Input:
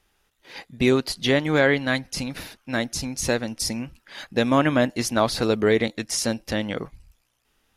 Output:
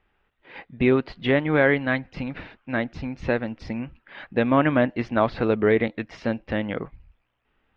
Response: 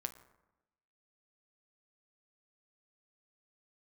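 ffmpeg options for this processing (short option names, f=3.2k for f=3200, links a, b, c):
-af "lowpass=f=2.7k:w=0.5412,lowpass=f=2.7k:w=1.3066"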